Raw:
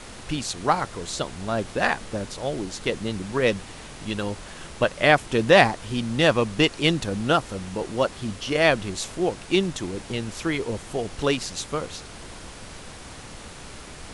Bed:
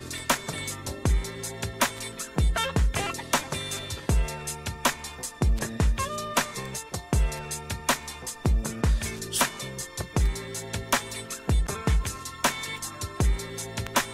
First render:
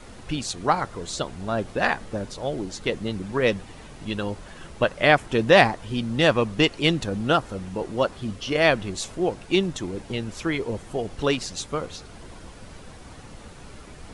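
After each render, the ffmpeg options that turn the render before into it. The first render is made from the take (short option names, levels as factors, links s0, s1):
-af "afftdn=nr=8:nf=-41"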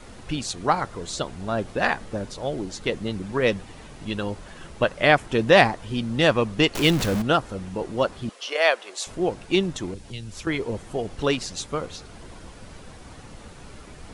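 -filter_complex "[0:a]asettb=1/sr,asplit=3[s0][s1][s2];[s0]atrim=end=6.754[s3];[s1]atrim=start=6.75:end=7.22,asetpts=PTS-STARTPTS,afade=t=in:d=0.004:c=qsin,afade=t=out:st=0.466:d=0.004:c=qsin,aeval=exprs='val(0)+0.5*0.0708*sgn(val(0))':c=same[s4];[s2]atrim=start=7.216[s5];[s3][s4]acrossfade=d=0.004:c1=hsin:c2=qsin[s6];[s6][s5]acrossfade=d=0.004:c1=qsin:c2=hsin,asettb=1/sr,asplit=3[s7][s8][s9];[s7]atrim=end=8.294[s10];[s8]atrim=start=8.29:end=9.07,asetpts=PTS-STARTPTS,afade=t=in:d=0.004:c=qsin,afade=t=out:st=0.776:d=0.004:c=qsin,highpass=f=490:w=0.5412,highpass=f=490:w=1.3066[s11];[s9]atrim=start=9.066[s12];[s10][s11]acrossfade=d=0.004:c1=hsin:c2=qsin[s13];[s13][s12]acrossfade=d=0.004:c1=qsin:c2=hsin,asettb=1/sr,asplit=3[s14][s15][s16];[s14]atrim=end=9.944[s17];[s15]atrim=start=9.94:end=10.47,asetpts=PTS-STARTPTS,afade=t=in:d=0.004:c=qsin,afade=t=out:st=0.526:d=0.004:c=qsin,acrossover=split=140|3000[s18][s19][s20];[s19]acompressor=threshold=0.00501:ratio=3:attack=3.2:release=140:knee=2.83:detection=peak[s21];[s18][s21][s20]amix=inputs=3:normalize=0[s22];[s16]atrim=start=10.466[s23];[s17][s22]acrossfade=d=0.004:c1=hsin:c2=qsin[s24];[s24][s23]acrossfade=d=0.004:c1=qsin:c2=hsin"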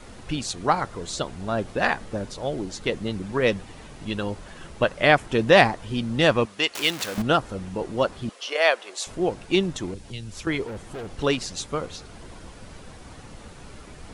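-filter_complex "[0:a]asettb=1/sr,asplit=3[s0][s1][s2];[s0]atrim=end=6.454[s3];[s1]atrim=start=6.45:end=7.18,asetpts=PTS-STARTPTS,afade=t=in:d=0.004:c=qsin,afade=t=out:st=0.726:d=0.004:c=qsin,highpass=f=1100:p=1[s4];[s2]atrim=start=7.176[s5];[s3][s4]acrossfade=d=0.004:c1=hsin:c2=qsin[s6];[s6][s5]acrossfade=d=0.004:c1=qsin:c2=hsin,asettb=1/sr,asplit=3[s7][s8][s9];[s7]atrim=end=10.674[s10];[s8]atrim=start=10.67:end=11.17,asetpts=PTS-STARTPTS,afade=t=in:d=0.004:c=qsin,afade=t=out:st=0.496:d=0.004:c=qsin,asoftclip=type=hard:threshold=0.0266[s11];[s9]atrim=start=11.166[s12];[s10][s11]acrossfade=d=0.004:c1=hsin:c2=qsin[s13];[s13][s12]acrossfade=d=0.004:c1=qsin:c2=hsin"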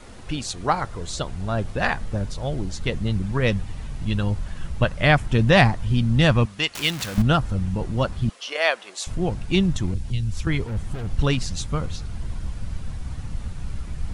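-af "asubboost=boost=7.5:cutoff=140"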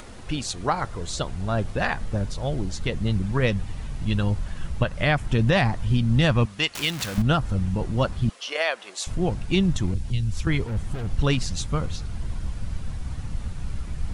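-af "alimiter=limit=0.299:level=0:latency=1:release=146,acompressor=mode=upward:threshold=0.0112:ratio=2.5"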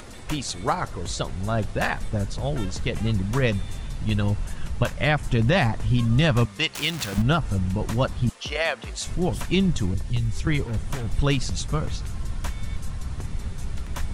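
-filter_complex "[1:a]volume=0.211[s0];[0:a][s0]amix=inputs=2:normalize=0"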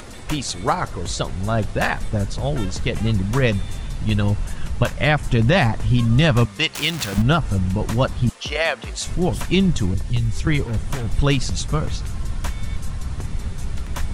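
-af "volume=1.58"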